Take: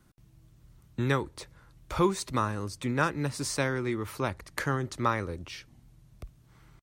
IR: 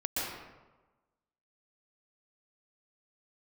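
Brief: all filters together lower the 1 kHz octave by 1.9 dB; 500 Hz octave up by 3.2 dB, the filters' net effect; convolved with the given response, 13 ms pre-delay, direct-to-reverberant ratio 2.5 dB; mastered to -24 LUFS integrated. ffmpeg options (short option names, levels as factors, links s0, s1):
-filter_complex "[0:a]equalizer=f=500:t=o:g=5,equalizer=f=1000:t=o:g=-3.5,asplit=2[s0][s1];[1:a]atrim=start_sample=2205,adelay=13[s2];[s1][s2]afir=irnorm=-1:irlink=0,volume=0.355[s3];[s0][s3]amix=inputs=2:normalize=0,volume=1.58"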